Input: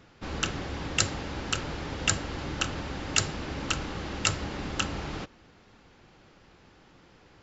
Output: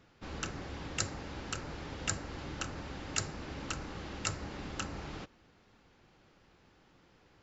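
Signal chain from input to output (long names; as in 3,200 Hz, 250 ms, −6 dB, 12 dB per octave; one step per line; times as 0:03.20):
dynamic equaliser 3,200 Hz, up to −7 dB, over −44 dBFS, Q 2.2
level −7.5 dB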